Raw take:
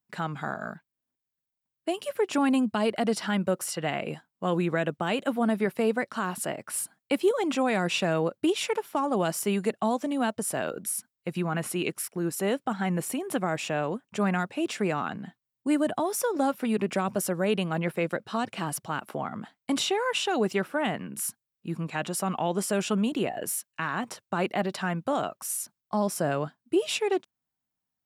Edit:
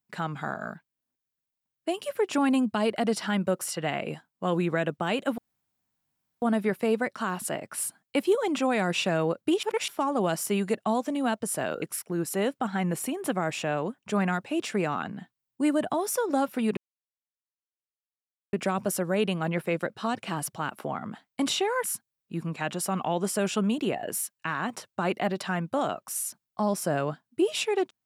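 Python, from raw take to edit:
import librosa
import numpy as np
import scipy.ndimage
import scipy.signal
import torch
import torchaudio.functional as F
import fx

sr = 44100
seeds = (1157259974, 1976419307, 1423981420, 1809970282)

y = fx.edit(x, sr, fx.insert_room_tone(at_s=5.38, length_s=1.04),
    fx.reverse_span(start_s=8.59, length_s=0.25),
    fx.cut(start_s=10.78, length_s=1.1),
    fx.insert_silence(at_s=16.83, length_s=1.76),
    fx.cut(start_s=20.14, length_s=1.04), tone=tone)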